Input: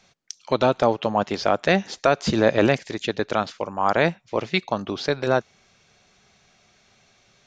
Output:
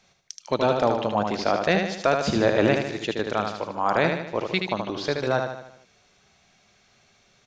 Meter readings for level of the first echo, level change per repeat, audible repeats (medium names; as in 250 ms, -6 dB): -5.0 dB, -6.0 dB, 5